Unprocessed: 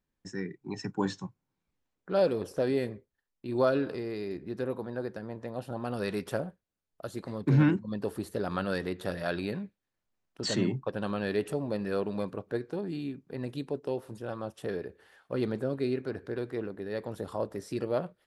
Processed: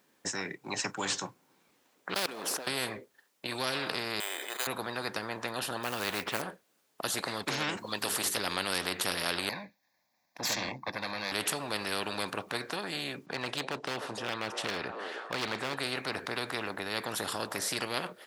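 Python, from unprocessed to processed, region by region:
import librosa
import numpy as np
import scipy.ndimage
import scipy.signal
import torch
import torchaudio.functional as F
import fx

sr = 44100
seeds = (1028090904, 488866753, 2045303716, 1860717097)

y = fx.chain(x, sr, fx.law_mismatch(coded='mu'),
    fx.highpass(hz=260.0, slope=12),
    fx.level_steps(step_db=24), at=(2.14, 2.67))
y = fx.chain(y, sr, fx.highpass(hz=770.0, slope=24),
    fx.resample_bad(factor=8, down='filtered', up='hold'),
    fx.sustainer(db_per_s=45.0), at=(4.2, 4.67))
y = fx.chain(y, sr, fx.lowpass(hz=2400.0, slope=12),
    fx.quant_float(bits=4), at=(5.83, 6.42))
y = fx.chain(y, sr, fx.tilt_eq(slope=2.0),
    fx.hum_notches(base_hz=50, count=9), at=(7.77, 8.37))
y = fx.chain(y, sr, fx.tube_stage(drive_db=24.0, bias=0.65),
    fx.fixed_phaser(hz=2000.0, stages=8), at=(9.49, 11.32))
y = fx.chain(y, sr, fx.lowpass(hz=5700.0, slope=12),
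    fx.clip_hard(threshold_db=-27.0),
    fx.echo_stepped(ms=302, hz=580.0, octaves=0.7, feedback_pct=70, wet_db=-10.0), at=(13.26, 15.77))
y = scipy.signal.sosfilt(scipy.signal.butter(2, 300.0, 'highpass', fs=sr, output='sos'), y)
y = fx.spectral_comp(y, sr, ratio=4.0)
y = F.gain(torch.from_numpy(y), 1.0).numpy()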